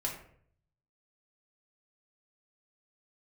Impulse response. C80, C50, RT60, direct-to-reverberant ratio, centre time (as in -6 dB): 10.0 dB, 6.0 dB, 0.60 s, -2.5 dB, 27 ms